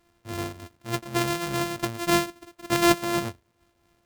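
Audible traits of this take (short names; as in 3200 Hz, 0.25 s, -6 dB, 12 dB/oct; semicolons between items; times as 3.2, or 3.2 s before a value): a buzz of ramps at a fixed pitch in blocks of 128 samples; tremolo triangle 3.4 Hz, depth 55%; a quantiser's noise floor 12-bit, dither none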